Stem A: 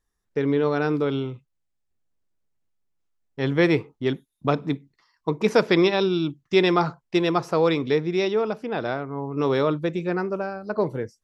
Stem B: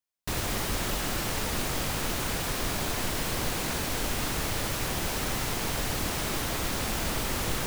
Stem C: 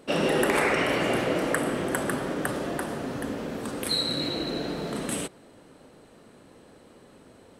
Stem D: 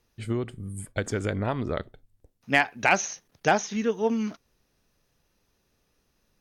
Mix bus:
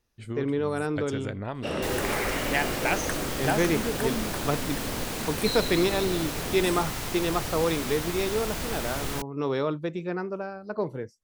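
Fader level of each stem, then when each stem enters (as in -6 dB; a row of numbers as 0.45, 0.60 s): -5.5, -2.5, -6.0, -6.0 dB; 0.00, 1.55, 1.55, 0.00 s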